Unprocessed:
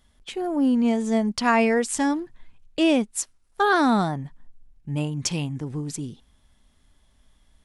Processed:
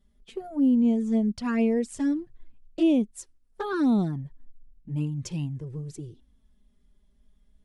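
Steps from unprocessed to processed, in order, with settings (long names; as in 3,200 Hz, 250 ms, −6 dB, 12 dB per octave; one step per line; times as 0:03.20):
drawn EQ curve 370 Hz 0 dB, 530 Hz −5 dB, 800 Hz −11 dB
flanger swept by the level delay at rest 5.1 ms, full sweep at −18 dBFS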